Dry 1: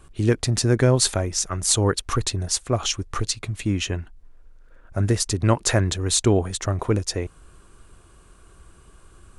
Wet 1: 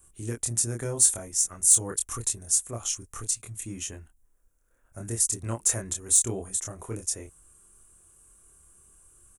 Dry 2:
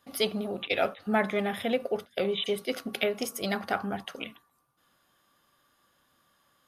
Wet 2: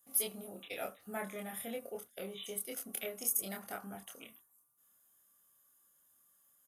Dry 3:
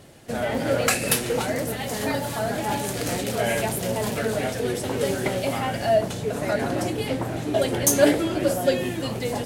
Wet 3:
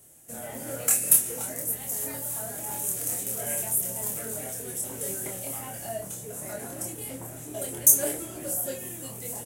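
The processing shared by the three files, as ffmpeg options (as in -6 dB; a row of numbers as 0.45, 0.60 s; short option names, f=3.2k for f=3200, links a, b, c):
-filter_complex "[0:a]acrossover=split=770|1400[a][b][c];[c]asoftclip=type=hard:threshold=-9dB[d];[a][b][d]amix=inputs=3:normalize=0,asplit=2[e][f];[f]adelay=26,volume=-3dB[g];[e][g]amix=inputs=2:normalize=0,aexciter=amount=12:drive=3.6:freq=6.5k,volume=-16dB"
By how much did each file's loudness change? -2.5, -9.0, -2.5 LU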